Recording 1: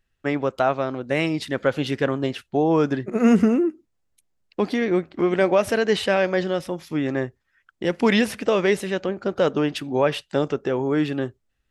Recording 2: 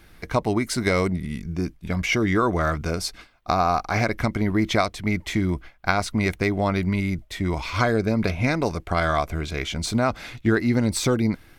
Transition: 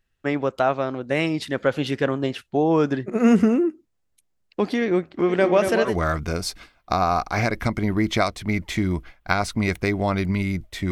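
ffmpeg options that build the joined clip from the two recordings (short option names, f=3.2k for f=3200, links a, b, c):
-filter_complex "[0:a]asplit=3[a][b][c];[a]afade=t=out:st=5.28:d=0.02[d];[b]aecho=1:1:232|464|696|928|1160|1392:0.447|0.232|0.121|0.0628|0.0327|0.017,afade=t=in:st=5.28:d=0.02,afade=t=out:st=5.96:d=0.02[e];[c]afade=t=in:st=5.96:d=0.02[f];[d][e][f]amix=inputs=3:normalize=0,apad=whole_dur=10.91,atrim=end=10.91,atrim=end=5.96,asetpts=PTS-STARTPTS[g];[1:a]atrim=start=2.4:end=7.49,asetpts=PTS-STARTPTS[h];[g][h]acrossfade=d=0.14:c1=tri:c2=tri"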